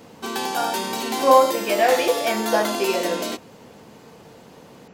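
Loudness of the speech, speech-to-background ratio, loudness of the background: -21.0 LUFS, 5.5 dB, -26.5 LUFS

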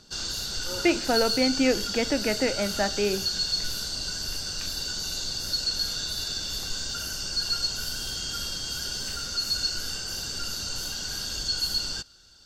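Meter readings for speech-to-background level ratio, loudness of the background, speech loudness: 2.0 dB, -28.5 LUFS, -26.5 LUFS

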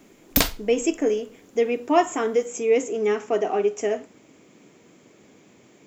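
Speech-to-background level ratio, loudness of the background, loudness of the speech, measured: -1.0 dB, -23.0 LUFS, -24.0 LUFS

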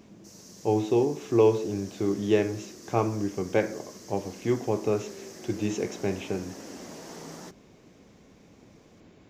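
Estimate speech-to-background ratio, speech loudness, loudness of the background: 17.0 dB, -28.0 LUFS, -45.0 LUFS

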